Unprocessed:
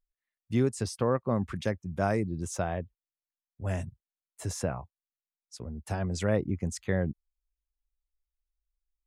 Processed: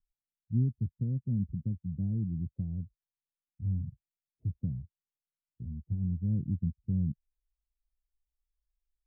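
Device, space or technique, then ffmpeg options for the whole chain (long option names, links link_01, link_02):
the neighbour's flat through the wall: -af "lowpass=frequency=210:width=0.5412,lowpass=frequency=210:width=1.3066,equalizer=frequency=140:width_type=o:width=0.77:gain=3.5"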